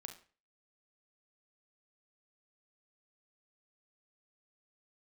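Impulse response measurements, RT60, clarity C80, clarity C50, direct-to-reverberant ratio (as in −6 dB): 0.40 s, 15.5 dB, 9.0 dB, 5.0 dB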